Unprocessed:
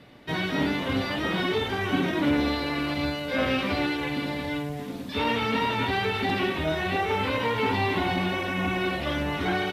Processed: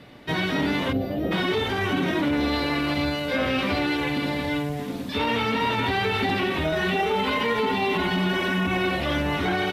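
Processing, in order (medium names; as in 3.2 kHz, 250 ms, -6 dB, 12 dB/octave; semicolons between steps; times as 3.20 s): 0.92–1.32 s: time-frequency box 790–12000 Hz -17 dB; 6.72–8.67 s: comb 4.8 ms, depth 83%; peak limiter -19.5 dBFS, peak gain reduction 8.5 dB; trim +4 dB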